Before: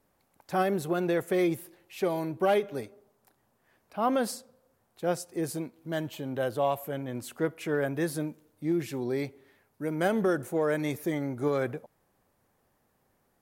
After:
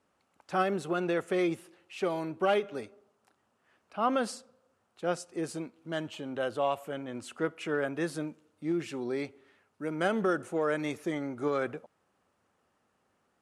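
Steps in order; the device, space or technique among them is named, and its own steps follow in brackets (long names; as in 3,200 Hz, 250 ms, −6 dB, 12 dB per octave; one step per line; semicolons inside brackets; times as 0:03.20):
car door speaker (loudspeaker in its box 83–9,200 Hz, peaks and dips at 130 Hz −8 dB, 1,300 Hz +7 dB, 2,800 Hz +6 dB)
level −2.5 dB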